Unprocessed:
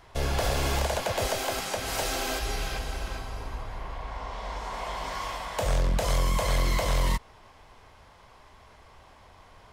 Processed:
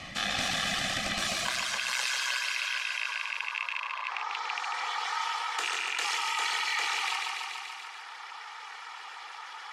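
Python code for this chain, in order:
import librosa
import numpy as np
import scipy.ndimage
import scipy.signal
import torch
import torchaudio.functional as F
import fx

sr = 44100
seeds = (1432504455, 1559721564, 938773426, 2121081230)

y = fx.rattle_buzz(x, sr, strikes_db=-33.0, level_db=-21.0)
y = scipy.signal.sosfilt(scipy.signal.butter(2, 6700.0, 'lowpass', fs=sr, output='sos'), y)
y = fx.dereverb_blind(y, sr, rt60_s=1.6)
y = scipy.signal.sosfilt(scipy.signal.butter(4, 1100.0, 'highpass', fs=sr, output='sos'), y)
y = y + 0.9 * np.pad(y, (int(1.9 * sr / 1000.0), 0))[:len(y)]
y = fx.ring_mod(y, sr, carrier_hz=fx.steps((0.0, 900.0), (1.45, 64.0), (4.1, 180.0)))
y = fx.echo_feedback(y, sr, ms=144, feedback_pct=58, wet_db=-5.5)
y = fx.env_flatten(y, sr, amount_pct=50)
y = y * 10.0 ** (3.0 / 20.0)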